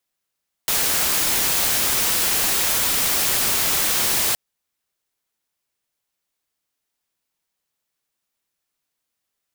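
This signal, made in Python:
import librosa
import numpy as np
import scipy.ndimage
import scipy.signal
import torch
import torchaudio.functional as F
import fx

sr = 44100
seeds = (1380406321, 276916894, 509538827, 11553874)

y = fx.noise_colour(sr, seeds[0], length_s=3.67, colour='white', level_db=-20.0)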